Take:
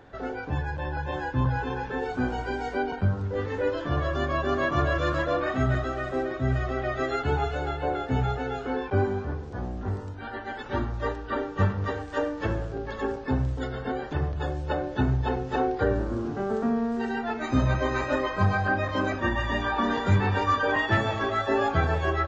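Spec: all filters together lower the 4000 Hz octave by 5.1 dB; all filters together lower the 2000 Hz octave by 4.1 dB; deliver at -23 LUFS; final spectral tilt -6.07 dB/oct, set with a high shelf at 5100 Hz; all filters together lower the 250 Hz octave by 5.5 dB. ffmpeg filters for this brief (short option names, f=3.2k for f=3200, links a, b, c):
-af "equalizer=f=250:t=o:g=-7,equalizer=f=2k:t=o:g=-4.5,equalizer=f=4k:t=o:g=-6,highshelf=f=5.1k:g=3,volume=7dB"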